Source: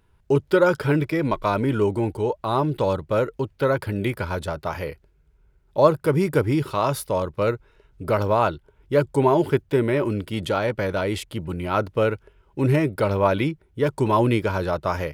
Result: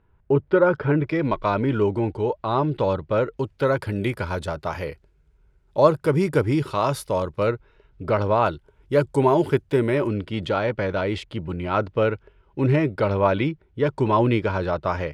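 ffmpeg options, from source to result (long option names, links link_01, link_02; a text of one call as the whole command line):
ffmpeg -i in.wav -af "asetnsamples=nb_out_samples=441:pad=0,asendcmd='1.07 lowpass f 4200;3.38 lowpass f 9500;7.47 lowpass f 4500;8.46 lowpass f 11000;10.07 lowpass f 4300',lowpass=1900" out.wav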